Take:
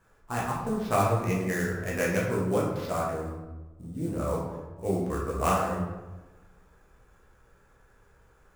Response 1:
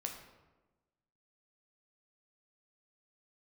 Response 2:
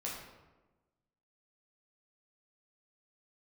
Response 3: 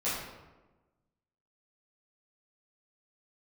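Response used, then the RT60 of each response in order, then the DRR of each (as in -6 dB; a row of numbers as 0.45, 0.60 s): 2; 1.2, 1.2, 1.2 s; 2.0, -5.0, -11.5 dB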